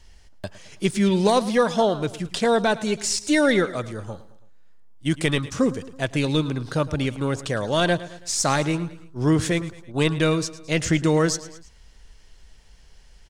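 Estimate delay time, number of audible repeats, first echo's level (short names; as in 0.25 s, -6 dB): 0.109 s, 3, -17.0 dB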